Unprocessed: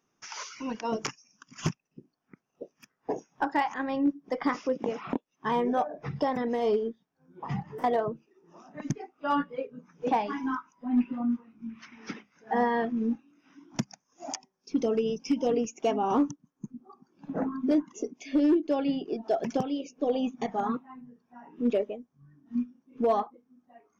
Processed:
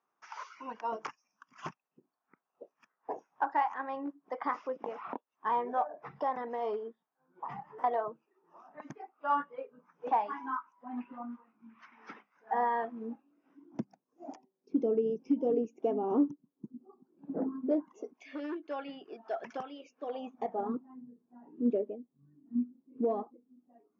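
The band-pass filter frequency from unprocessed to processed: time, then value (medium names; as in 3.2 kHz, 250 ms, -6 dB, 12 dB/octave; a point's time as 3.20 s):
band-pass filter, Q 1.5
12.79 s 1 kHz
13.82 s 360 Hz
17.46 s 360 Hz
18.32 s 1.4 kHz
20.08 s 1.4 kHz
20.78 s 310 Hz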